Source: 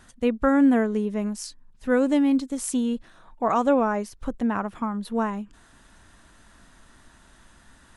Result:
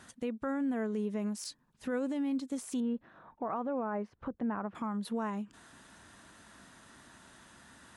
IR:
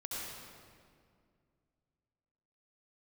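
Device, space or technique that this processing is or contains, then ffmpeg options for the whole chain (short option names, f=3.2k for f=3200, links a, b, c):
podcast mastering chain: -filter_complex "[0:a]asettb=1/sr,asplit=3[a][b][c];[a]atrim=end=2.804[d];[b]atrim=start=2.8:end=4.75,asetpts=PTS-STARTPTS,afade=t=in:d=0.004:c=qsin,afade=t=out:st=1.946:d=0.004:c=qsin,lowpass=1.7k[e];[c]atrim=start=4.746[f];[d][e]acrossfade=d=0.004:c1=hsin:c2=qsin[g];[g][f]acrossfade=d=0.004:c1=qsin:c2=hsin,highpass=110,deesser=0.7,acompressor=threshold=-35dB:ratio=2,alimiter=level_in=2.5dB:limit=-24dB:level=0:latency=1:release=34,volume=-2.5dB" -ar 44100 -c:a libmp3lame -b:a 96k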